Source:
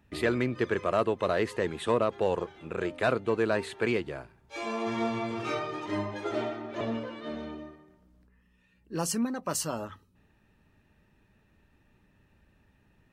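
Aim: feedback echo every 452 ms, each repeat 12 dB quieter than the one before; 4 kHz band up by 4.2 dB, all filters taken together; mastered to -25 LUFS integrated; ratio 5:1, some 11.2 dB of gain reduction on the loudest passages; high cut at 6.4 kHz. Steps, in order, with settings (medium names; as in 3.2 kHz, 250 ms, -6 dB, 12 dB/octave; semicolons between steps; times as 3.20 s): low-pass 6.4 kHz; peaking EQ 4 kHz +6 dB; compression 5:1, threshold -34 dBFS; feedback delay 452 ms, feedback 25%, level -12 dB; trim +13 dB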